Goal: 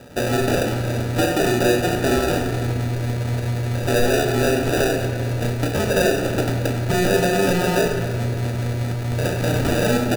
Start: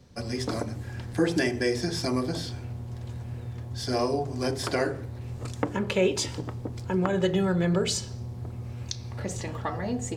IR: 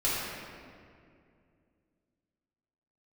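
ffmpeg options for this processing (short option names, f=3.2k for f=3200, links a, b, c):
-filter_complex "[0:a]acrossover=split=100|2800[a][b][c];[a]acompressor=threshold=-47dB:ratio=4[d];[b]acompressor=threshold=-30dB:ratio=4[e];[c]acompressor=threshold=-40dB:ratio=4[f];[d][e][f]amix=inputs=3:normalize=0,asplit=2[g][h];[h]highpass=f=720:p=1,volume=24dB,asoftclip=type=tanh:threshold=-13.5dB[i];[g][i]amix=inputs=2:normalize=0,lowpass=f=1.3k:p=1,volume=-6dB,acrusher=samples=41:mix=1:aa=0.000001,asplit=2[j][k];[k]adelay=33,volume=-10.5dB[l];[j][l]amix=inputs=2:normalize=0,asplit=2[m][n];[1:a]atrim=start_sample=2205[o];[n][o]afir=irnorm=-1:irlink=0,volume=-14dB[p];[m][p]amix=inputs=2:normalize=0,volume=3.5dB"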